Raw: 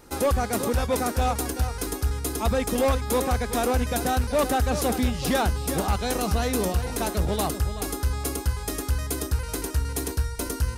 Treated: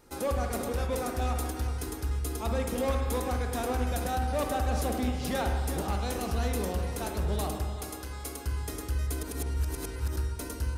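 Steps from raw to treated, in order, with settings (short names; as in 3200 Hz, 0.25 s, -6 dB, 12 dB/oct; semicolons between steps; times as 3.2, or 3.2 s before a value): 7.65–8.45 low shelf 210 Hz -11.5 dB; 9.23–10.16 reverse; spring tank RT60 1.4 s, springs 44/57 ms, chirp 75 ms, DRR 3 dB; gain -8.5 dB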